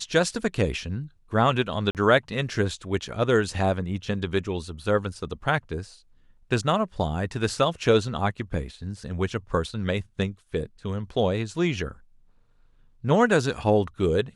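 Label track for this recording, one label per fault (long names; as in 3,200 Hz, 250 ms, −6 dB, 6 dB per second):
1.910000	1.950000	drop-out 38 ms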